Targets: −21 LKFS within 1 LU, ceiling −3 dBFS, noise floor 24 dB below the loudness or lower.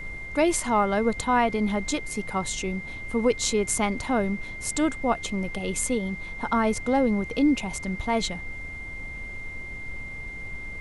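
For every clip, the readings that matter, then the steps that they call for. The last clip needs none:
interfering tone 2,100 Hz; level of the tone −36 dBFS; background noise floor −37 dBFS; target noise floor −51 dBFS; integrated loudness −26.5 LKFS; sample peak −8.5 dBFS; target loudness −21.0 LKFS
→ notch filter 2,100 Hz, Q 30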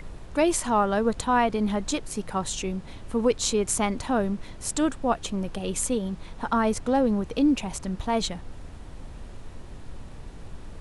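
interfering tone none found; background noise floor −42 dBFS; target noise floor −50 dBFS
→ noise reduction from a noise print 8 dB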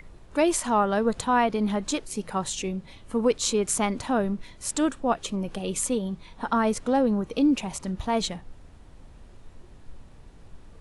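background noise floor −49 dBFS; target noise floor −51 dBFS
→ noise reduction from a noise print 6 dB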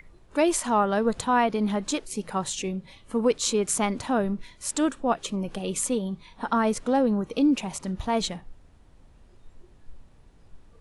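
background noise floor −55 dBFS; integrated loudness −26.5 LKFS; sample peak −9.0 dBFS; target loudness −21.0 LKFS
→ level +5.5 dB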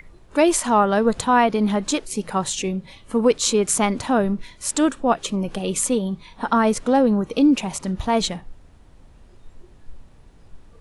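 integrated loudness −21.0 LKFS; sample peak −3.5 dBFS; background noise floor −49 dBFS

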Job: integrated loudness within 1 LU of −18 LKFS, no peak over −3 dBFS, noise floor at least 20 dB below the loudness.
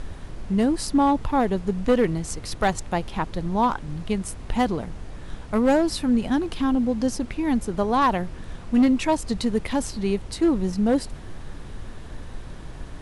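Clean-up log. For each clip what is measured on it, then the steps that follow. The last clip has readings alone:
share of clipped samples 0.7%; peaks flattened at −13.0 dBFS; background noise floor −39 dBFS; target noise floor −44 dBFS; integrated loudness −23.5 LKFS; sample peak −13.0 dBFS; target loudness −18.0 LKFS
→ clipped peaks rebuilt −13 dBFS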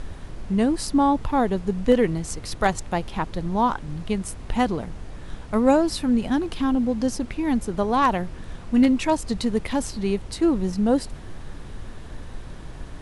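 share of clipped samples 0.0%; background noise floor −39 dBFS; target noise floor −44 dBFS
→ noise reduction from a noise print 6 dB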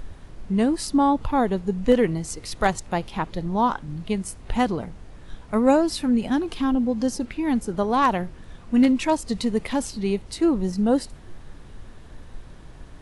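background noise floor −44 dBFS; integrated loudness −23.5 LKFS; sample peak −6.0 dBFS; target loudness −18.0 LKFS
→ level +5.5 dB
brickwall limiter −3 dBFS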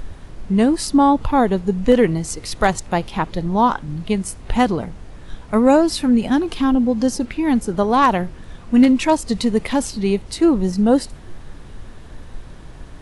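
integrated loudness −18.0 LKFS; sample peak −3.0 dBFS; background noise floor −39 dBFS

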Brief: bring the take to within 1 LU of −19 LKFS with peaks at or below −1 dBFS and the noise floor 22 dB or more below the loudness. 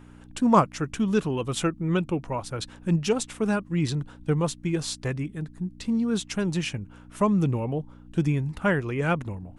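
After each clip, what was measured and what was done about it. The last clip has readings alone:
mains hum 60 Hz; hum harmonics up to 300 Hz; level of the hum −50 dBFS; integrated loudness −26.5 LKFS; sample peak −6.5 dBFS; target loudness −19.0 LKFS
→ hum removal 60 Hz, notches 5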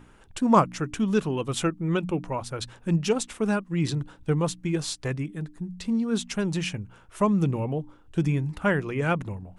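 mains hum none found; integrated loudness −27.0 LKFS; sample peak −7.0 dBFS; target loudness −19.0 LKFS
→ level +8 dB
brickwall limiter −1 dBFS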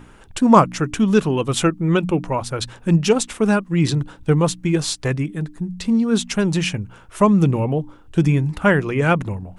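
integrated loudness −19.0 LKFS; sample peak −1.0 dBFS; background noise floor −46 dBFS

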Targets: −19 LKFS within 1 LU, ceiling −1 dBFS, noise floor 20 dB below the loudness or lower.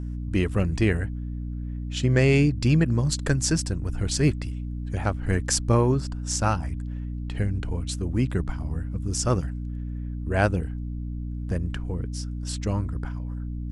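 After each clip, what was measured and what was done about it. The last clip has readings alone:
mains hum 60 Hz; hum harmonics up to 300 Hz; level of the hum −29 dBFS; integrated loudness −26.5 LKFS; sample peak −6.5 dBFS; target loudness −19.0 LKFS
→ mains-hum notches 60/120/180/240/300 Hz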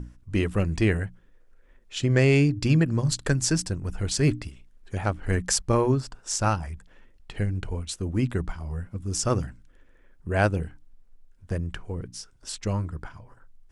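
mains hum none found; integrated loudness −26.5 LKFS; sample peak −7.0 dBFS; target loudness −19.0 LKFS
→ level +7.5 dB
brickwall limiter −1 dBFS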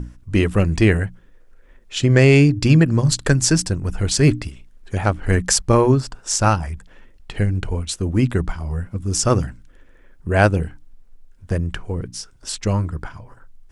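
integrated loudness −19.0 LKFS; sample peak −1.0 dBFS; background noise floor −49 dBFS

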